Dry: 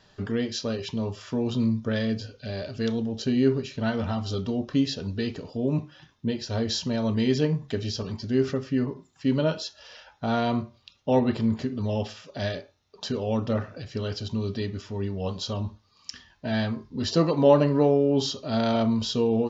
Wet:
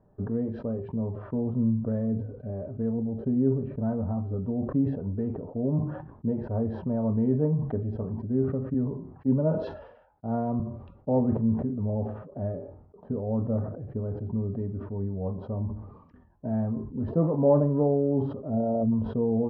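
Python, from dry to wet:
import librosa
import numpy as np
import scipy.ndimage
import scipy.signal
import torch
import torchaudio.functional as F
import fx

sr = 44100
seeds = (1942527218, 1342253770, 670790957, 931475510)

y = fx.high_shelf(x, sr, hz=2900.0, db=-8.0, at=(3.2, 4.18))
y = fx.peak_eq(y, sr, hz=1000.0, db=3.5, octaves=2.1, at=(4.89, 8.12))
y = fx.band_widen(y, sr, depth_pct=100, at=(8.74, 10.6))
y = fx.high_shelf(y, sr, hz=2400.0, db=-7.0, at=(11.85, 14.33))
y = fx.envelope_sharpen(y, sr, power=2.0, at=(18.49, 18.91), fade=0.02)
y = scipy.signal.sosfilt(scipy.signal.bessel(4, 600.0, 'lowpass', norm='mag', fs=sr, output='sos'), y)
y = fx.dynamic_eq(y, sr, hz=350.0, q=3.0, threshold_db=-40.0, ratio=4.0, max_db=-6)
y = fx.sustainer(y, sr, db_per_s=70.0)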